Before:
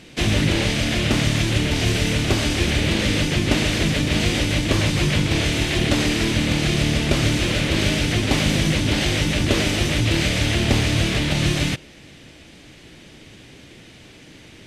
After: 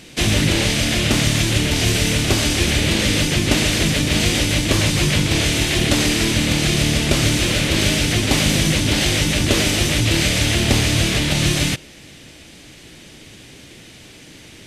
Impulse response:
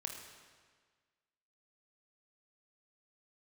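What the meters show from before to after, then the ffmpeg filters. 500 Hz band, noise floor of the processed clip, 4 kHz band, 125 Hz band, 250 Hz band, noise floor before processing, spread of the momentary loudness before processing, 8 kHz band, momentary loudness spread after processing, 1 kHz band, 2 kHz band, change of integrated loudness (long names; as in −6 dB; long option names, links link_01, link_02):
+1.5 dB, −43 dBFS, +4.5 dB, +1.5 dB, +1.5 dB, −45 dBFS, 1 LU, +7.5 dB, 1 LU, +2.0 dB, +3.0 dB, +3.0 dB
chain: -af "highshelf=frequency=5600:gain=10,volume=1.5dB"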